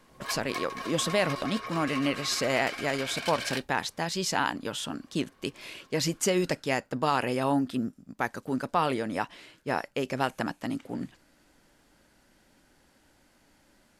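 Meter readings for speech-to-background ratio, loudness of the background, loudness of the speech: 6.5 dB, -36.5 LUFS, -30.0 LUFS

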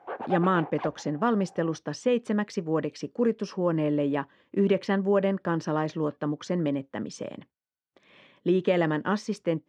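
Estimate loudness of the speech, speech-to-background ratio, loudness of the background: -27.5 LUFS, 9.5 dB, -37.0 LUFS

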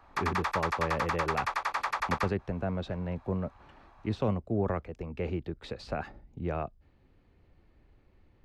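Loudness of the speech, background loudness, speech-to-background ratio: -35.0 LUFS, -32.5 LUFS, -2.5 dB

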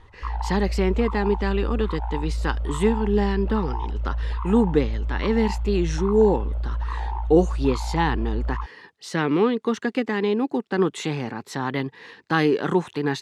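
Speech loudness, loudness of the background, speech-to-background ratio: -24.0 LUFS, -29.5 LUFS, 5.5 dB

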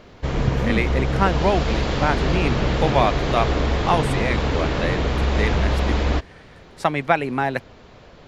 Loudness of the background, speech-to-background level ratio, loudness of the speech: -22.5 LUFS, -2.0 dB, -24.5 LUFS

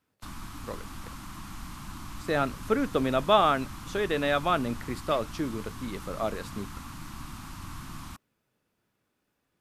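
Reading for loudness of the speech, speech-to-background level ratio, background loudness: -28.5 LUFS, 14.0 dB, -42.5 LUFS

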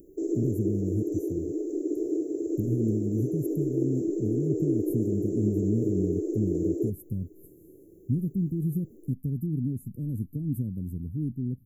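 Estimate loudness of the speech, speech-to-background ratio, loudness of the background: -31.5 LUFS, -1.5 dB, -30.0 LUFS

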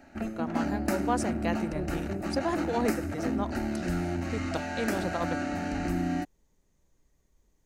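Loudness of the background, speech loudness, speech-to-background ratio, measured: -32.0 LUFS, -34.5 LUFS, -2.5 dB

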